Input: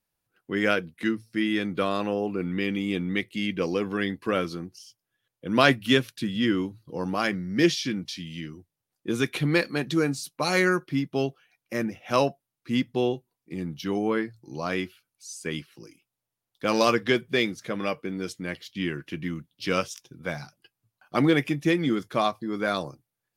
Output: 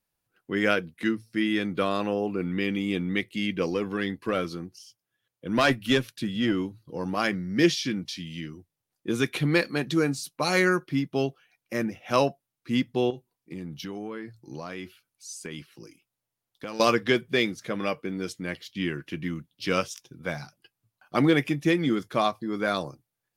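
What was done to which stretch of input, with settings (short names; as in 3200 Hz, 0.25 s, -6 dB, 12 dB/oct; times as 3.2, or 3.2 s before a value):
3.7–7.17 tube stage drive 11 dB, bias 0.35
13.1–16.8 compressor, threshold -32 dBFS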